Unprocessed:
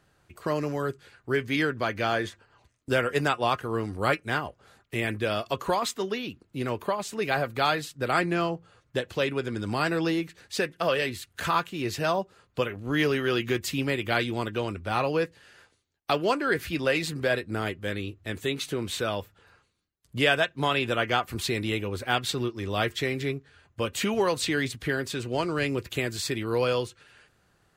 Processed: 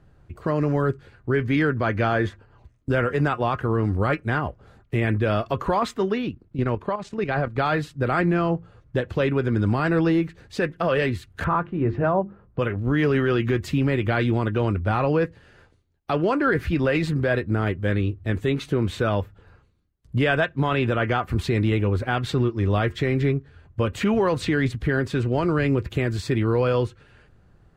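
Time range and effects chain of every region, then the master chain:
0:06.29–0:07.58: low-pass filter 7,500 Hz + output level in coarse steps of 10 dB
0:11.44–0:12.59: low-pass filter 1,400 Hz + mains-hum notches 50/100/150/200/250/300/350 Hz
whole clip: spectral tilt −3.5 dB per octave; brickwall limiter −16 dBFS; dynamic equaliser 1,500 Hz, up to +6 dB, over −42 dBFS, Q 0.83; level +2 dB

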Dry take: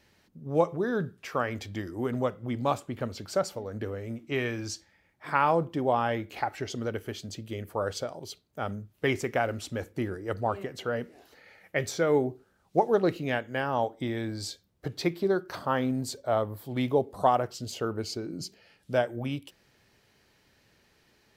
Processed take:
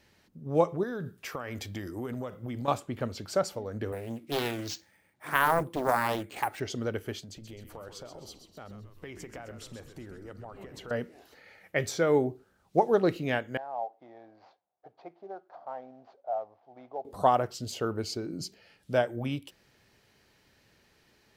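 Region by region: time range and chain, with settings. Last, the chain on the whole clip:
0:00.83–0:02.68: high-shelf EQ 10,000 Hz +11 dB + downward compressor 12 to 1, threshold −31 dBFS
0:03.92–0:06.60: high-pass filter 98 Hz + bad sample-rate conversion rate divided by 4×, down none, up hold + highs frequency-modulated by the lows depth 0.82 ms
0:07.19–0:10.91: downward compressor 4 to 1, threshold −43 dBFS + echo with shifted repeats 130 ms, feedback 54%, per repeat −96 Hz, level −9 dB
0:13.57–0:17.05: variable-slope delta modulation 32 kbit/s + resonant band-pass 730 Hz, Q 6.5
whole clip: no processing

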